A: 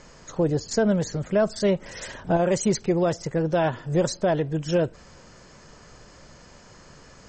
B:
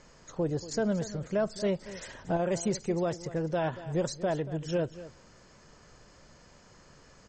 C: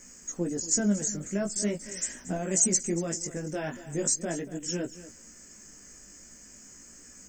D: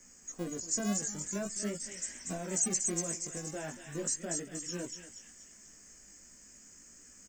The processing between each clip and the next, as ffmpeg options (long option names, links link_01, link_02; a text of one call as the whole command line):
ffmpeg -i in.wav -af "aecho=1:1:234:0.168,volume=-7.5dB" out.wav
ffmpeg -i in.wav -af "equalizer=frequency=125:width_type=o:width=1:gain=-11,equalizer=frequency=250:width_type=o:width=1:gain=10,equalizer=frequency=500:width_type=o:width=1:gain=-6,equalizer=frequency=1000:width_type=o:width=1:gain=-8,equalizer=frequency=2000:width_type=o:width=1:gain=5,equalizer=frequency=4000:width_type=o:width=1:gain=-5,aexciter=amount=13.2:drive=3.9:freq=5900,flanger=delay=16:depth=4.3:speed=0.41,volume=3dB" out.wav
ffmpeg -i in.wav -filter_complex "[0:a]acrossover=split=240|1300[link_01][link_02][link_03];[link_01]acrusher=samples=39:mix=1:aa=0.000001:lfo=1:lforange=23.4:lforate=0.4[link_04];[link_03]asplit=7[link_05][link_06][link_07][link_08][link_09][link_10][link_11];[link_06]adelay=238,afreqshift=74,volume=-3.5dB[link_12];[link_07]adelay=476,afreqshift=148,volume=-10.2dB[link_13];[link_08]adelay=714,afreqshift=222,volume=-17dB[link_14];[link_09]adelay=952,afreqshift=296,volume=-23.7dB[link_15];[link_10]adelay=1190,afreqshift=370,volume=-30.5dB[link_16];[link_11]adelay=1428,afreqshift=444,volume=-37.2dB[link_17];[link_05][link_12][link_13][link_14][link_15][link_16][link_17]amix=inputs=7:normalize=0[link_18];[link_04][link_02][link_18]amix=inputs=3:normalize=0,volume=-7dB" out.wav